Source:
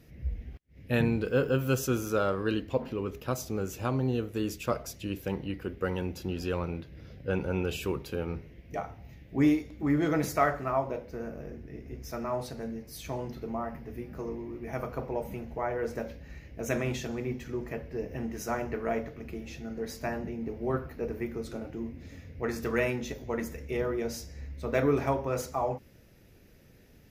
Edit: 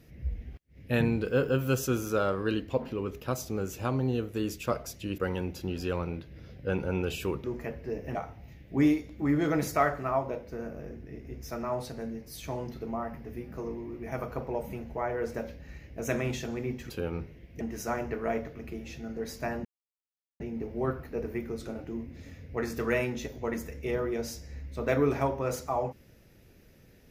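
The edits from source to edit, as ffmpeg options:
-filter_complex "[0:a]asplit=7[a][b][c][d][e][f][g];[a]atrim=end=5.182[h];[b]atrim=start=5.788:end=8.052[i];[c]atrim=start=17.508:end=18.222[j];[d]atrim=start=8.758:end=17.512[k];[e]atrim=start=8.048:end=8.762[l];[f]atrim=start=18.218:end=20.26,asetpts=PTS-STARTPTS,afade=t=out:st=2.038:d=0.004:c=hsin,apad=pad_dur=0.75[m];[g]atrim=start=20.26,asetpts=PTS-STARTPTS,afade=t=in:d=0.004:c=hsin[n];[h][i]acrossfade=d=0.004:c1=hsin:c2=hsin[o];[o][j]acrossfade=d=0.004:c1=hsin:c2=hsin[p];[p][k]acrossfade=d=0.004:c1=hsin:c2=hsin[q];[q][l]acrossfade=d=0.004:c1=hsin:c2=hsin[r];[m][n]concat=n=2:v=0:a=1[s];[r][s]acrossfade=d=0.004:c1=hsin:c2=hsin"

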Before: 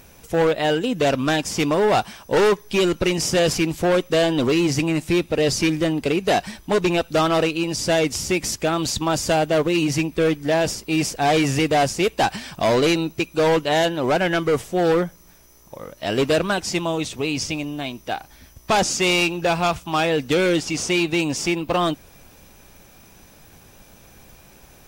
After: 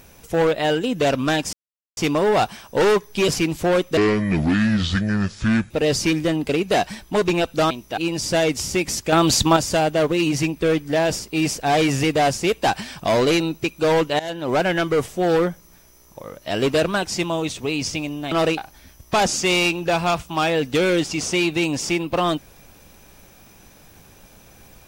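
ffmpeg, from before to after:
-filter_complex "[0:a]asplit=12[a][b][c][d][e][f][g][h][i][j][k][l];[a]atrim=end=1.53,asetpts=PTS-STARTPTS,afade=t=out:st=1.526:d=0.004:c=hsin,apad=pad_dur=0.44[m];[b]atrim=start=1.53:end=2.842,asetpts=PTS-STARTPTS,afade=t=in:d=0.004:c=hsin[n];[c]atrim=start=3.468:end=4.164[o];[d]atrim=start=4.16:end=5.27,asetpts=PTS-STARTPTS,asetrate=28224,aresample=44100[p];[e]atrim=start=5.266:end=7.272[q];[f]atrim=start=17.868:end=18.142[r];[g]atrim=start=7.528:end=8.682[s];[h]atrim=start=8.678:end=9.122,asetpts=PTS-STARTPTS,volume=6.5dB[t];[i]atrim=start=9.118:end=13.75,asetpts=PTS-STARTPTS,afade=t=out:st=4.628:d=0.004:c=hsin:silence=0.112202[u];[j]atrim=start=13.75:end=17.872,asetpts=PTS-STARTPTS,afade=t=in:d=0.35:silence=0.112202[v];[k]atrim=start=7.268:end=7.532[w];[l]atrim=start=18.138[x];[m][n]concat=n=2:v=0:a=1[y];[y][o]acrossfade=d=0.004:c1=hsin:c2=hsin[z];[z][p]acrossfade=d=0.004:c1=hsin:c2=hsin[aa];[aa][q]acrossfade=d=0.004:c1=hsin:c2=hsin[ab];[ab][r]acrossfade=d=0.004:c1=hsin:c2=hsin[ac];[ac][s]acrossfade=d=0.004:c1=hsin:c2=hsin[ad];[ad][t]acrossfade=d=0.004:c1=hsin:c2=hsin[ae];[u][v]concat=n=2:v=0:a=1[af];[ae][af]acrossfade=d=0.004:c1=hsin:c2=hsin[ag];[ag][w]acrossfade=d=0.004:c1=hsin:c2=hsin[ah];[ah][x]acrossfade=d=0.004:c1=hsin:c2=hsin"

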